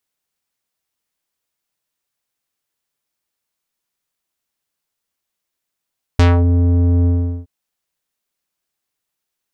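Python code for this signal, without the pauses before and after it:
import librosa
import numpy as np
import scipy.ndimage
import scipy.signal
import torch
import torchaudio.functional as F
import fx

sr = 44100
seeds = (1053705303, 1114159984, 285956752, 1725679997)

y = fx.sub_voice(sr, note=41, wave='square', cutoff_hz=330.0, q=0.99, env_oct=4.5, env_s=0.25, attack_ms=2.4, decay_s=0.18, sustain_db=-4.5, release_s=0.4, note_s=0.87, slope=12)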